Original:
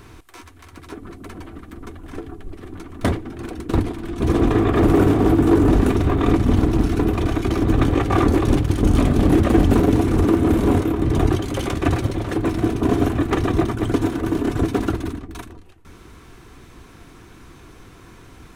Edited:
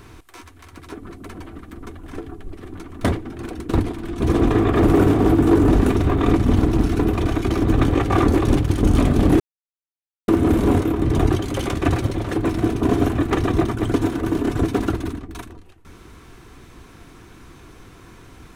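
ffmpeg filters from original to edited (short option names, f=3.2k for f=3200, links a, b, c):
-filter_complex "[0:a]asplit=3[a][b][c];[a]atrim=end=9.4,asetpts=PTS-STARTPTS,afade=t=out:st=9.396:d=0.004:c=hsin[d];[b]atrim=start=9.4:end=10.28,asetpts=PTS-STARTPTS,volume=0[e];[c]atrim=start=10.28,asetpts=PTS-STARTPTS,afade=t=in:d=0.004:c=hsin[f];[d][e][f]concat=n=3:v=0:a=1"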